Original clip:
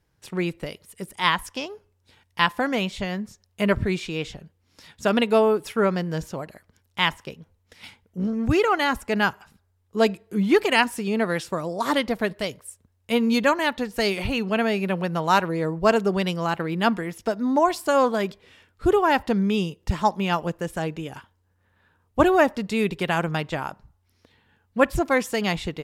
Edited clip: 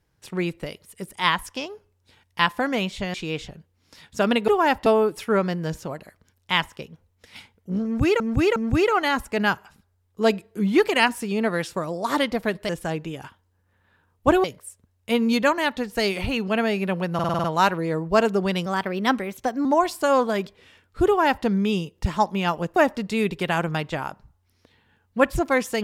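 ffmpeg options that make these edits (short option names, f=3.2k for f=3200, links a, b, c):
-filter_complex "[0:a]asplit=17[a][b][c][d][e][f][g][h][i][j][k][l][m][n][o][p][q];[a]atrim=end=3.142[r];[b]atrim=start=3.998:end=5.342[s];[c]atrim=start=18.918:end=19.302[t];[d]atrim=start=5.338:end=8.682[u];[e]atrim=start=8.318:end=8.682[v];[f]atrim=start=8.318:end=12.452[w];[g]atrim=start=20.608:end=22.362[x];[h]atrim=start=12.448:end=15.202[y];[i]atrim=start=15.148:end=15.202[z];[j]atrim=start=15.148:end=15.202[aa];[k]atrim=start=15.148:end=15.202[ab];[l]atrim=start=15.148:end=15.202[ac];[m]atrim=start=15.148:end=15.202[ad];[n]atrim=start=15.148:end=16.374[ae];[o]atrim=start=16.37:end=17.5,asetpts=PTS-STARTPTS,asetrate=50274,aresample=44100,atrim=end_sample=43713,asetpts=PTS-STARTPTS[af];[p]atrim=start=17.496:end=20.612[ag];[q]atrim=start=22.358[ah];[r][s]acrossfade=d=0.004:c1=hsin:c2=hsin[ai];[ai][t]acrossfade=d=0.004:c1=hsin:c2=hsin[aj];[aj][u]acrossfade=d=0.004:c1=hsin:c2=hsin[ak];[ak][v]acrossfade=d=0.004:c1=hsin:c2=hsin[al];[al][w]acrossfade=d=0.004:c1=hsin:c2=hsin[am];[am][x]acrossfade=d=0.004:c1=hsin:c2=hsin[an];[an][y]acrossfade=d=0.004:c1=hsin:c2=hsin[ao];[ao][z]acrossfade=d=0.004:c1=hsin:c2=hsin[ap];[ap][aa]acrossfade=d=0.004:c1=hsin:c2=hsin[aq];[aq][ab]acrossfade=d=0.004:c1=hsin:c2=hsin[ar];[ar][ac]acrossfade=d=0.004:c1=hsin:c2=hsin[as];[as][ad]acrossfade=d=0.004:c1=hsin:c2=hsin[at];[at][ae]acrossfade=d=0.004:c1=hsin:c2=hsin[au];[au][af]acrossfade=d=0.004:c1=hsin:c2=hsin[av];[av][ag]acrossfade=d=0.004:c1=hsin:c2=hsin[aw];[aw][ah]acrossfade=d=0.004:c1=hsin:c2=hsin"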